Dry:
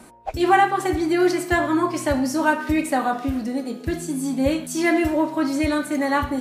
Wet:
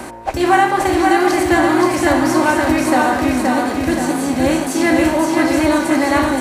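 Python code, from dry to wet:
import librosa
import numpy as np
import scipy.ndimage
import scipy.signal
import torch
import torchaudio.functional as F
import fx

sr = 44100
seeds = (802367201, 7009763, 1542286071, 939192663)

p1 = fx.bin_compress(x, sr, power=0.6)
p2 = fx.wow_flutter(p1, sr, seeds[0], rate_hz=2.1, depth_cents=29.0)
p3 = p2 + fx.echo_feedback(p2, sr, ms=524, feedback_pct=49, wet_db=-3.5, dry=0)
y = p3 * librosa.db_to_amplitude(1.5)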